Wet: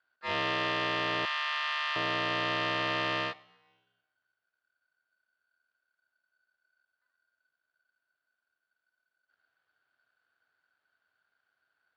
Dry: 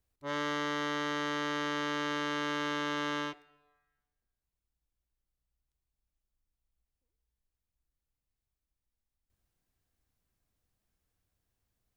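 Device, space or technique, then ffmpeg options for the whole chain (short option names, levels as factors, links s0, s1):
ring modulator pedal into a guitar cabinet: -filter_complex "[0:a]aeval=exprs='val(0)*sgn(sin(2*PI*1500*n/s))':c=same,highpass=82,equalizer=f=86:t=q:w=4:g=8,equalizer=f=200:t=q:w=4:g=-3,equalizer=f=660:t=q:w=4:g=6,equalizer=f=2200:t=q:w=4:g=-3,lowpass=f=3700:w=0.5412,lowpass=f=3700:w=1.3066,asettb=1/sr,asplit=3[s0][s1][s2];[s0]atrim=end=1.254[s3];[s1]atrim=start=1.25:end=1.96,asetpts=PTS-STARTPTS,afade=t=in:d=0.004:c=qsin,afade=t=out:st=0.706:d=0.004:c=qsin,highpass=f=940:w=0.5412,highpass=f=940:w=1.3066[s4];[s2]atrim=start=1.956[s5];[s3][s4]acrossfade=d=0.004:c1=hsin:c2=qsin[s6];[s6][s5]acrossfade=d=0.004:c1=qsin:c2=hsin,lowshelf=f=110:g=-10,volume=1.68"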